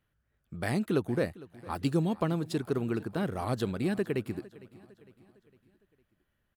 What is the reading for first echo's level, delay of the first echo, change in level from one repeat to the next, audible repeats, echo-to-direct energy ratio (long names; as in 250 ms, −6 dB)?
−20.0 dB, 456 ms, −6.5 dB, 3, −19.0 dB